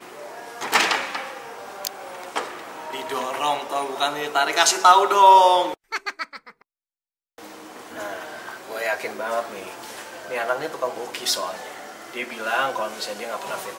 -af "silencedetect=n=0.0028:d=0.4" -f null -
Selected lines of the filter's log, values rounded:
silence_start: 6.62
silence_end: 7.38 | silence_duration: 0.76